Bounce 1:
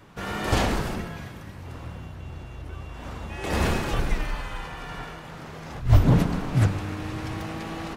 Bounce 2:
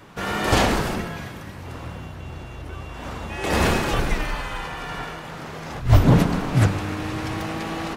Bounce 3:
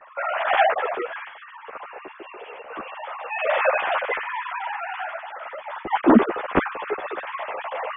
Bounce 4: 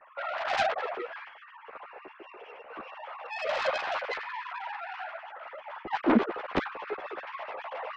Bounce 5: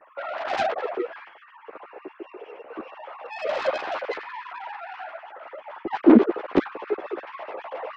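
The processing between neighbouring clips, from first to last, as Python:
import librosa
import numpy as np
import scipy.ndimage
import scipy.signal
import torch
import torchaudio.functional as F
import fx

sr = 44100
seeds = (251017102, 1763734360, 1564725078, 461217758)

y1 = fx.low_shelf(x, sr, hz=150.0, db=-5.5)
y1 = y1 * librosa.db_to_amplitude(6.0)
y2 = fx.sine_speech(y1, sr)
y2 = fx.lowpass(y2, sr, hz=2000.0, slope=6)
y2 = fx.ensemble(y2, sr)
y2 = y2 * librosa.db_to_amplitude(2.0)
y3 = fx.self_delay(y2, sr, depth_ms=0.3)
y3 = y3 * librosa.db_to_amplitude(-8.0)
y4 = fx.peak_eq(y3, sr, hz=330.0, db=14.0, octaves=1.4)
y4 = y4 * librosa.db_to_amplitude(-1.0)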